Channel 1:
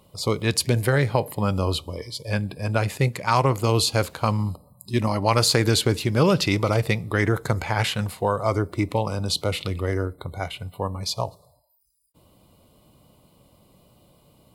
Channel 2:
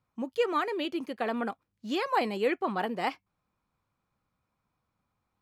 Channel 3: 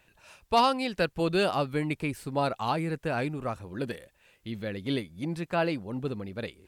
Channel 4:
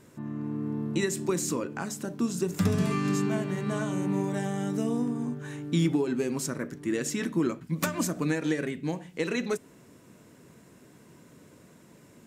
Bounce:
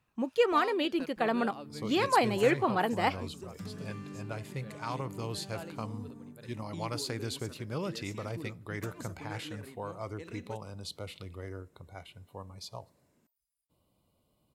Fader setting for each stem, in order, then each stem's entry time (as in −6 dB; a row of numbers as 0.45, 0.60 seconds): −17.0, +2.0, −18.0, −17.5 decibels; 1.55, 0.00, 0.00, 1.00 seconds